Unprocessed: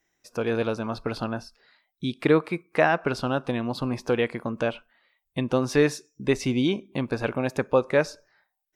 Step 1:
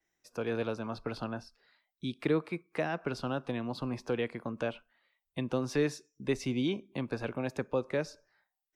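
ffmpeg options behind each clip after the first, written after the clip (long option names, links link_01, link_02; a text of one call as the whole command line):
ffmpeg -i in.wav -filter_complex "[0:a]acrossover=split=180|440|3100[link_01][link_02][link_03][link_04];[link_03]alimiter=limit=-19dB:level=0:latency=1:release=233[link_05];[link_01][link_02][link_05][link_04]amix=inputs=4:normalize=0,adynamicequalizer=threshold=0.00282:dfrequency=7400:dqfactor=0.7:tfrequency=7400:tqfactor=0.7:attack=5:release=100:ratio=0.375:range=2.5:mode=cutabove:tftype=highshelf,volume=-7.5dB" out.wav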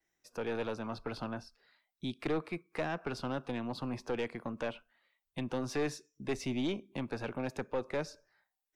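ffmpeg -i in.wav -af "aeval=exprs='(tanh(22.4*val(0)+0.3)-tanh(0.3))/22.4':channel_layout=same" out.wav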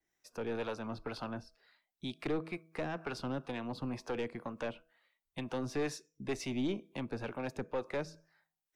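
ffmpeg -i in.wav -filter_complex "[0:a]bandreject=frequency=161.8:width_type=h:width=4,bandreject=frequency=323.6:width_type=h:width=4,bandreject=frequency=485.4:width_type=h:width=4,bandreject=frequency=647.2:width_type=h:width=4,acrossover=split=470[link_01][link_02];[link_01]aeval=exprs='val(0)*(1-0.5/2+0.5/2*cos(2*PI*2.1*n/s))':channel_layout=same[link_03];[link_02]aeval=exprs='val(0)*(1-0.5/2-0.5/2*cos(2*PI*2.1*n/s))':channel_layout=same[link_04];[link_03][link_04]amix=inputs=2:normalize=0,volume=1dB" out.wav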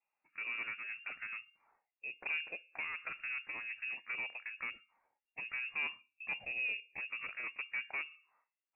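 ffmpeg -i in.wav -af "lowpass=frequency=2400:width_type=q:width=0.5098,lowpass=frequency=2400:width_type=q:width=0.6013,lowpass=frequency=2400:width_type=q:width=0.9,lowpass=frequency=2400:width_type=q:width=2.563,afreqshift=-2800,volume=-3.5dB" out.wav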